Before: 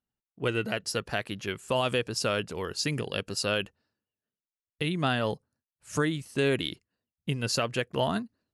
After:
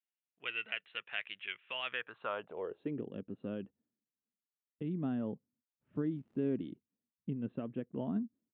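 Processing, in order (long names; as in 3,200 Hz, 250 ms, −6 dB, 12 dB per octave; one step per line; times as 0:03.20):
downsampling to 8,000 Hz
0:05.94–0:06.56: surface crackle 170 per second −34 dBFS
band-pass filter sweep 2,400 Hz → 240 Hz, 0:01.78–0:03.12
level −1 dB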